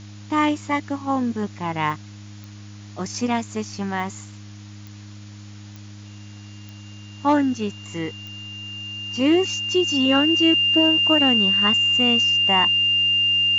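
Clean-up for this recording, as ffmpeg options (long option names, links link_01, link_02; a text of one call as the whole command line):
ffmpeg -i in.wav -af "adeclick=threshold=4,bandreject=frequency=102.8:width_type=h:width=4,bandreject=frequency=205.6:width_type=h:width=4,bandreject=frequency=308.4:width_type=h:width=4,bandreject=frequency=2800:width=30,afwtdn=0.005" out.wav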